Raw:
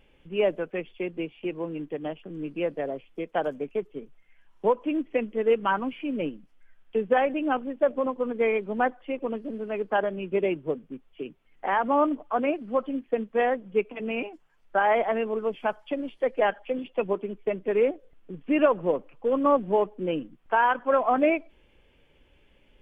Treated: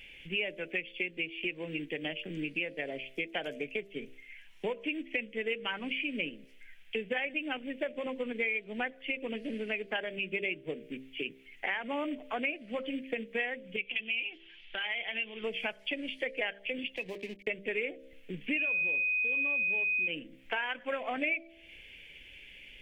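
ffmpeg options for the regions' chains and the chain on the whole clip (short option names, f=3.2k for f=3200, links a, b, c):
-filter_complex "[0:a]asettb=1/sr,asplit=3[a][b][c];[a]atrim=end=13.764[d];[b]atrim=start=13.76:end=15.44,asetpts=PTS-STARTPTS,afade=t=in:d=0.004:c=qsin,afade=t=out:st=1.676:d=0.004:c=qsin,aecho=1:1:5.7:0.38,atrim=end_sample=74088,acompressor=threshold=-40dB:ratio=3:attack=3.2:release=140:knee=1:detection=peak,lowpass=f=3.2k:t=q:w=5.6[e];[c]atrim=start=15.436[f];[d][e]acrossfade=d=0.004:c1=hsin:c2=qsin[g];[g][f]acrossfade=d=0.004:c1=qsin:c2=hsin,asettb=1/sr,asplit=3[h][i][j];[h]atrim=end=16.964[k];[i]atrim=start=16.96:end=17.47,asetpts=PTS-STARTPTS,afade=t=in:d=0.004:c=qsin,afade=t=out:st=0.506:d=0.004:c=qsin,aeval=exprs='sgn(val(0))*max(abs(val(0))-0.00398,0)':c=same,asuperstop=centerf=1400:order=4:qfactor=3.9,acompressor=threshold=-41dB:ratio=2:attack=3.2:release=140:knee=1:detection=peak[l];[j]atrim=start=17.466[m];[k][l]acrossfade=d=0.004:c1=hsin:c2=qsin[n];[n][m]acrossfade=d=0.004:c1=qsin:c2=hsin,asettb=1/sr,asplit=3[o][p][q];[o]atrim=end=18.574[r];[p]atrim=start=18.57:end=20.08,asetpts=PTS-STARTPTS,afade=t=in:d=0.004:c=qsin,afade=t=out:st=1.506:d=0.004:c=qsin,bandreject=f=181.4:t=h:w=4,bandreject=f=362.8:t=h:w=4,bandreject=f=544.2:t=h:w=4,bandreject=f=725.6:t=h:w=4,bandreject=f=907:t=h:w=4,bandreject=f=1.0884k:t=h:w=4,bandreject=f=1.2698k:t=h:w=4,bandreject=f=1.4512k:t=h:w=4,acompressor=threshold=-27dB:ratio=2:attack=3.2:release=140:knee=1:detection=peak,aeval=exprs='val(0)+0.0316*sin(2*PI*2500*n/s)':c=same[s];[q]atrim=start=20.076[t];[r][s]acrossfade=d=0.004:c1=hsin:c2=qsin[u];[u][t]acrossfade=d=0.004:c1=qsin:c2=hsin,highshelf=f=1.6k:t=q:w=3:g=11.5,bandreject=f=66.18:t=h:w=4,bandreject=f=132.36:t=h:w=4,bandreject=f=198.54:t=h:w=4,bandreject=f=264.72:t=h:w=4,bandreject=f=330.9:t=h:w=4,bandreject=f=397.08:t=h:w=4,bandreject=f=463.26:t=h:w=4,bandreject=f=529.44:t=h:w=4,bandreject=f=595.62:t=h:w=4,bandreject=f=661.8:t=h:w=4,acompressor=threshold=-33dB:ratio=4"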